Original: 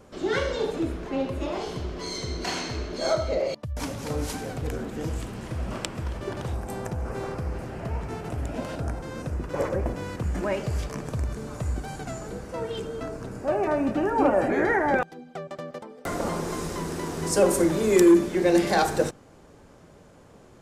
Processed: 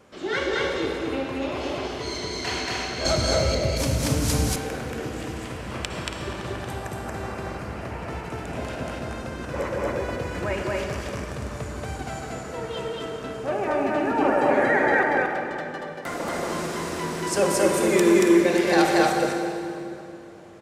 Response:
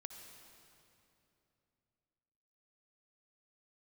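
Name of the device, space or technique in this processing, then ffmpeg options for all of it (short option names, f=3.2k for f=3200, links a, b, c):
stadium PA: -filter_complex "[0:a]highpass=f=120:p=1,equalizer=f=2.3k:t=o:w=1.9:g=6,aecho=1:1:230.3|279.9:0.891|0.251[a];[1:a]atrim=start_sample=2205[b];[a][b]afir=irnorm=-1:irlink=0,asettb=1/sr,asplit=3[c][d][e];[c]atrim=end=3.054[f];[d]atrim=start=3.05:end=4.56,asetpts=PTS-STARTPTS,afade=t=in:d=0.004:c=qsin,afade=t=out:st=1.506:d=0.004:c=qsin,bass=f=250:g=14,treble=f=4k:g=11[g];[e]atrim=start=4.556[h];[f][g]acrossfade=d=0.004:c1=hsin:c2=qsin[i];[i][h]acrossfade=d=0.004:c1=qsin:c2=hsin,volume=3dB"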